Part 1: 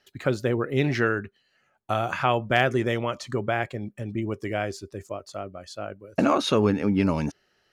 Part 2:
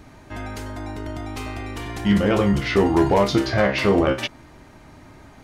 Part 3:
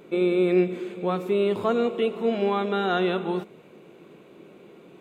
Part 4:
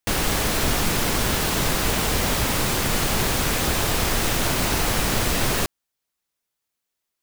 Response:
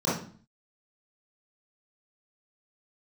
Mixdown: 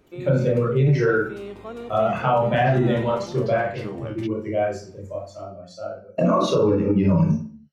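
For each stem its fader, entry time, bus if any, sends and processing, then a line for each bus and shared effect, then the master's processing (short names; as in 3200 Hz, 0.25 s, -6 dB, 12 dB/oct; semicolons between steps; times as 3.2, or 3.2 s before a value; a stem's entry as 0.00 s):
+1.5 dB, 0.00 s, send -4.5 dB, per-bin expansion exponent 1.5; flange 0.37 Hz, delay 1 ms, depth 1.3 ms, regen -32%
-17.0 dB, 0.00 s, no send, dry
-12.5 dB, 0.00 s, no send, dry
off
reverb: on, RT60 0.45 s, pre-delay 21 ms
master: limiter -10.5 dBFS, peak gain reduction 9 dB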